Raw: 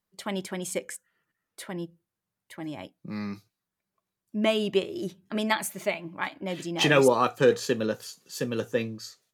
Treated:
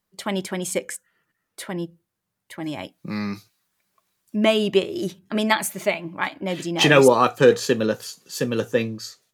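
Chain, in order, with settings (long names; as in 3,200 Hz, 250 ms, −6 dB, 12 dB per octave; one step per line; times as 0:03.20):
0:02.66–0:05.19: one half of a high-frequency compander encoder only
level +6 dB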